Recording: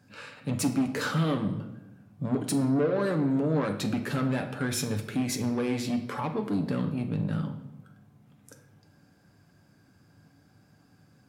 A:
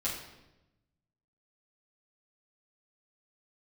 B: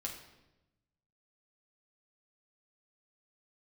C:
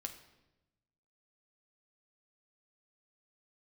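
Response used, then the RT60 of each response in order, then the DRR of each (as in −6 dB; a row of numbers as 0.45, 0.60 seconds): C; 0.95, 1.0, 1.0 seconds; −9.0, −1.5, 4.5 decibels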